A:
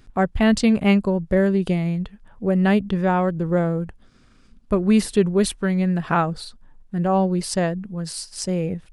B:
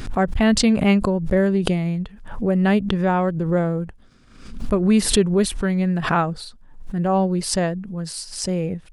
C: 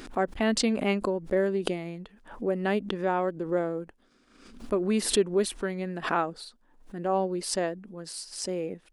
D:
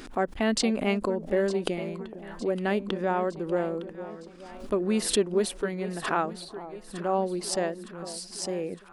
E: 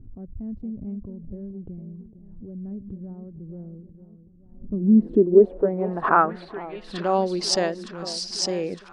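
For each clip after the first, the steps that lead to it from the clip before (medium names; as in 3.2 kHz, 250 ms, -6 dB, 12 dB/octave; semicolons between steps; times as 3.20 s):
swell ahead of each attack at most 79 dB/s
resonant low shelf 200 Hz -12 dB, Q 1.5; trim -7 dB
echo whose repeats swap between lows and highs 455 ms, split 940 Hz, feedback 73%, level -12.5 dB
low-pass sweep 110 Hz -> 5.4 kHz, 4.47–7.14 s; trim +4.5 dB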